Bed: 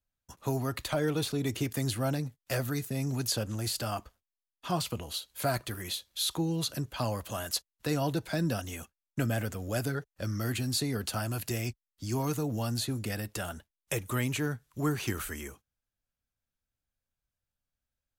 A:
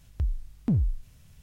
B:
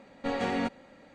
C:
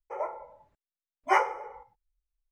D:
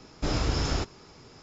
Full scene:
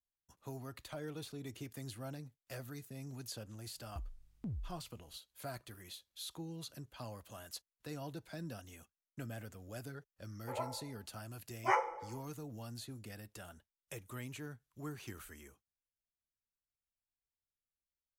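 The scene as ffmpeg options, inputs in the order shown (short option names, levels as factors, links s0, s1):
-filter_complex "[0:a]volume=0.178[s0];[3:a]aecho=1:1:6:0.54[s1];[1:a]atrim=end=1.42,asetpts=PTS-STARTPTS,volume=0.133,afade=t=in:d=0.004:c=hsin,afade=t=out:st=1.416:d=0.004:c=hsin,adelay=3760[s2];[s1]atrim=end=2.51,asetpts=PTS-STARTPTS,volume=0.398,afade=t=in:d=0.004:c=hsin,afade=t=out:st=2.506:d=0.004:c=hsin,adelay=10370[s3];[s0][s2][s3]amix=inputs=3:normalize=0"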